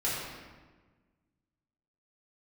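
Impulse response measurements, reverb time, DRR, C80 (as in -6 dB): 1.4 s, -9.5 dB, 1.0 dB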